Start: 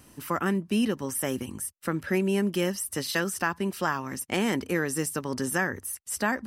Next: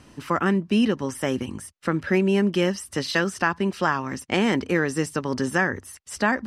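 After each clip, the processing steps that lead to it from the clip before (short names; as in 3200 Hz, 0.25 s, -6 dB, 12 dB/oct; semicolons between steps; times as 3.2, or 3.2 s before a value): LPF 5400 Hz 12 dB/oct; gain +5 dB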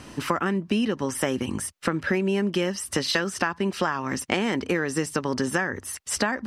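low shelf 220 Hz -4 dB; compressor 6:1, threshold -30 dBFS, peak gain reduction 13.5 dB; gain +8.5 dB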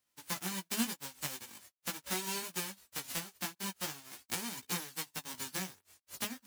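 spectral whitening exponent 0.1; chorus voices 2, 0.42 Hz, delay 19 ms, depth 3.1 ms; upward expander 2.5:1, over -43 dBFS; gain -5 dB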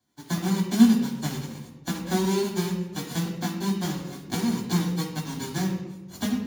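reverb RT60 1.3 s, pre-delay 3 ms, DRR -3 dB; gain -6 dB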